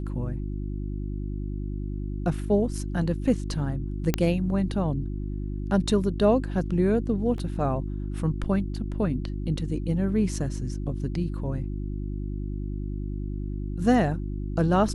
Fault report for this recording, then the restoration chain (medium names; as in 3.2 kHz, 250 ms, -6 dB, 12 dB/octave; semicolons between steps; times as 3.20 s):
hum 50 Hz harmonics 7 -31 dBFS
4.14 s: pop -8 dBFS
7.38 s: dropout 2.1 ms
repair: de-click; de-hum 50 Hz, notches 7; interpolate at 7.38 s, 2.1 ms